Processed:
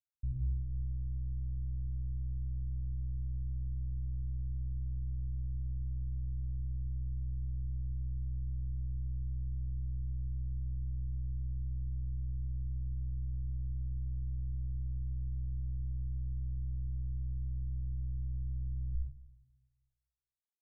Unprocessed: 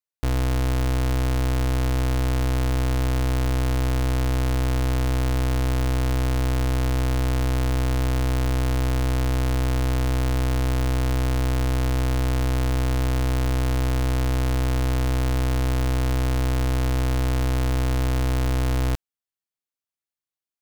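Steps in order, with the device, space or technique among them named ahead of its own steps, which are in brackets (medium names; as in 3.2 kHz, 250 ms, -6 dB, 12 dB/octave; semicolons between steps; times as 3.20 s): club heard from the street (peak limiter -32 dBFS, peak gain reduction 10.5 dB; low-pass 150 Hz 24 dB/octave; reverberation RT60 1.0 s, pre-delay 71 ms, DRR -0.5 dB); reverb removal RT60 1.6 s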